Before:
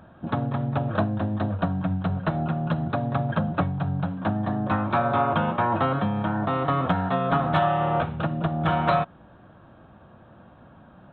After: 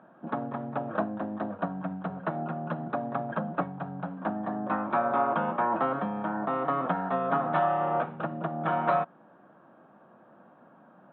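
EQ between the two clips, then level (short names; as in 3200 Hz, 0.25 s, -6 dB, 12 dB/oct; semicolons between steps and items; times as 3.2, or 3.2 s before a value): HPF 170 Hz 24 dB/oct; LPF 1700 Hz 12 dB/oct; low shelf 230 Hz -7 dB; -2.0 dB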